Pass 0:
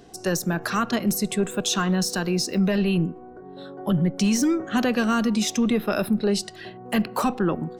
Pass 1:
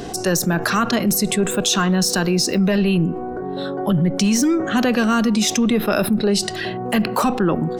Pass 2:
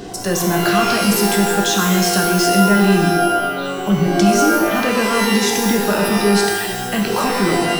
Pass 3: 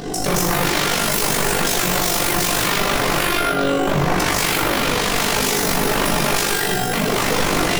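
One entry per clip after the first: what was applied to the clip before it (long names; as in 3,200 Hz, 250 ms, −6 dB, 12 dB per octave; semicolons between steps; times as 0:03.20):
envelope flattener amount 50%; level +3 dB
reverb with rising layers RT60 1.1 s, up +12 semitones, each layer −2 dB, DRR 1.5 dB; level −2.5 dB
wave folding −18 dBFS; amplitude modulation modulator 49 Hz, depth 85%; rectangular room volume 34 cubic metres, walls mixed, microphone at 0.47 metres; level +5.5 dB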